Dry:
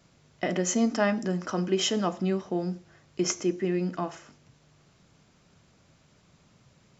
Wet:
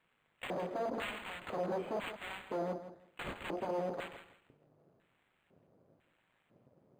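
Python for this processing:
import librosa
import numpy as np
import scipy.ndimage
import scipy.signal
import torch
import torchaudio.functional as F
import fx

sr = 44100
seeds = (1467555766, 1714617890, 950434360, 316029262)

p1 = scipy.signal.sosfilt(scipy.signal.butter(2, 55.0, 'highpass', fs=sr, output='sos'), x)
p2 = fx.peak_eq(p1, sr, hz=100.0, db=9.5, octaves=2.9)
p3 = 10.0 ** (-23.0 / 20.0) * (np.abs((p2 / 10.0 ** (-23.0 / 20.0) + 3.0) % 4.0 - 2.0) - 1.0)
p4 = fx.cheby_harmonics(p3, sr, harmonics=(6,), levels_db=(-8,), full_scale_db=-23.0)
p5 = fx.filter_lfo_bandpass(p4, sr, shape='square', hz=1.0, low_hz=520.0, high_hz=3300.0, q=1.8)
p6 = p5 + fx.echo_feedback(p5, sr, ms=164, feedback_pct=20, wet_db=-11.5, dry=0)
p7 = np.interp(np.arange(len(p6)), np.arange(len(p6))[::8], p6[::8])
y = F.gain(torch.from_numpy(p7), -2.0).numpy()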